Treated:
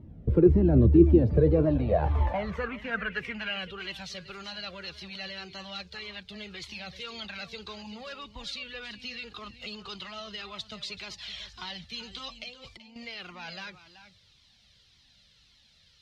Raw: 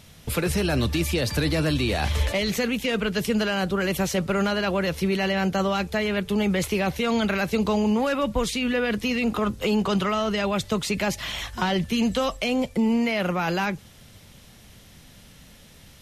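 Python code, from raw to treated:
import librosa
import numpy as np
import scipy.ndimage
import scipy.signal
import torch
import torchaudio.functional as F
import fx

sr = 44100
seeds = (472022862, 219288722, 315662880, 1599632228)

p1 = fx.over_compress(x, sr, threshold_db=-31.0, ratio=-1.0, at=(12.43, 12.96))
p2 = fx.low_shelf(p1, sr, hz=150.0, db=8.5)
p3 = p2 + fx.echo_single(p2, sr, ms=381, db=-13.5, dry=0)
p4 = fx.filter_sweep_bandpass(p3, sr, from_hz=340.0, to_hz=4300.0, start_s=1.12, end_s=4.13, q=3.0)
p5 = fx.riaa(p4, sr, side='playback')
p6 = fx.comb_cascade(p5, sr, direction='falling', hz=1.8)
y = p6 * 10.0 ** (8.5 / 20.0)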